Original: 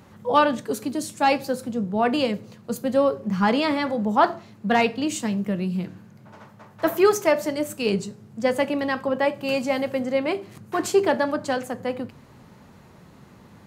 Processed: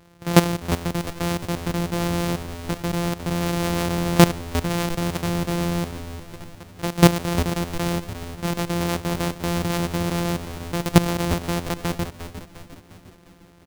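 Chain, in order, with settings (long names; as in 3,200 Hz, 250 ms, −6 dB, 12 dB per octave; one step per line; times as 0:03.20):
samples sorted by size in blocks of 256 samples
dynamic equaliser 1,600 Hz, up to −3 dB, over −36 dBFS, Q 1.3
output level in coarse steps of 15 dB
echo with shifted repeats 353 ms, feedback 52%, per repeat −90 Hz, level −11 dB
level +6.5 dB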